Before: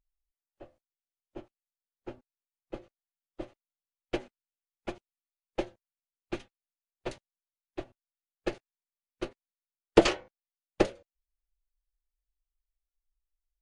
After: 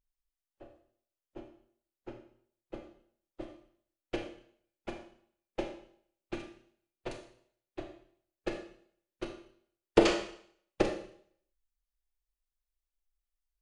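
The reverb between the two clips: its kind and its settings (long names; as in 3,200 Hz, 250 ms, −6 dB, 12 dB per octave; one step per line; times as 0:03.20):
four-comb reverb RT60 0.6 s, combs from 26 ms, DRR 4 dB
level −3.5 dB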